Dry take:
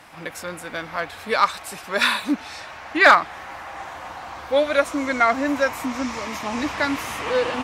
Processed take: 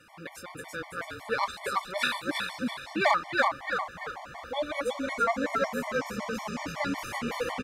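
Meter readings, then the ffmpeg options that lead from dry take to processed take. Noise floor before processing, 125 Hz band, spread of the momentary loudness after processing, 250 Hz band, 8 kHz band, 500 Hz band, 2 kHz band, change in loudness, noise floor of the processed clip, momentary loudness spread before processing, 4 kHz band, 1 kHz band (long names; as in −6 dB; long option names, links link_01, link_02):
−39 dBFS, −2.5 dB, 13 LU, −8.5 dB, −8.0 dB, −8.5 dB, −9.0 dB, −9.5 dB, −47 dBFS, 18 LU, −8.0 dB, −8.0 dB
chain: -filter_complex "[0:a]asplit=7[link_01][link_02][link_03][link_04][link_05][link_06][link_07];[link_02]adelay=333,afreqshift=-43,volume=-3dB[link_08];[link_03]adelay=666,afreqshift=-86,volume=-10.3dB[link_09];[link_04]adelay=999,afreqshift=-129,volume=-17.7dB[link_10];[link_05]adelay=1332,afreqshift=-172,volume=-25dB[link_11];[link_06]adelay=1665,afreqshift=-215,volume=-32.3dB[link_12];[link_07]adelay=1998,afreqshift=-258,volume=-39.7dB[link_13];[link_01][link_08][link_09][link_10][link_11][link_12][link_13]amix=inputs=7:normalize=0,afftfilt=real='re*gt(sin(2*PI*5.4*pts/sr)*(1-2*mod(floor(b*sr/1024/590),2)),0)':imag='im*gt(sin(2*PI*5.4*pts/sr)*(1-2*mod(floor(b*sr/1024/590),2)),0)':win_size=1024:overlap=0.75,volume=-6.5dB"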